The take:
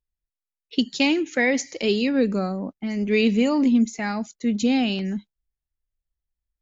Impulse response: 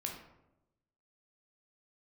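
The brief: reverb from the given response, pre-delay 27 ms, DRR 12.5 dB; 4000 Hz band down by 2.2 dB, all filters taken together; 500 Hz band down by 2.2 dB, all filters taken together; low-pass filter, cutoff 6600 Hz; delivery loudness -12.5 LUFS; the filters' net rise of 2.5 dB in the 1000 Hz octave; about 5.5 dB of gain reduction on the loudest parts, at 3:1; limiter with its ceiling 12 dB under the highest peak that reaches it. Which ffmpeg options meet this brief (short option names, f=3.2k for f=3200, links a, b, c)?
-filter_complex "[0:a]lowpass=6.6k,equalizer=f=500:t=o:g=-3.5,equalizer=f=1k:t=o:g=5,equalizer=f=4k:t=o:g=-3,acompressor=threshold=-23dB:ratio=3,alimiter=limit=-23.5dB:level=0:latency=1,asplit=2[a][b];[1:a]atrim=start_sample=2205,adelay=27[c];[b][c]afir=irnorm=-1:irlink=0,volume=-12.5dB[d];[a][d]amix=inputs=2:normalize=0,volume=18.5dB"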